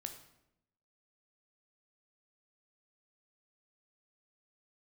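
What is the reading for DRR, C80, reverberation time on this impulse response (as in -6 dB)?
5.5 dB, 11.5 dB, 0.85 s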